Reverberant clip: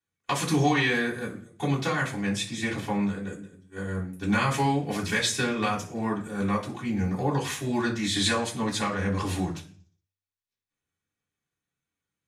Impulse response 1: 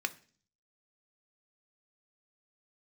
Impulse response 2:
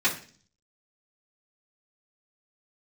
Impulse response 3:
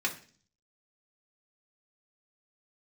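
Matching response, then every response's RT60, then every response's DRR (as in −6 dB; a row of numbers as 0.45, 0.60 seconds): 2; 0.45, 0.45, 0.45 seconds; 8.0, −9.0, −1.0 decibels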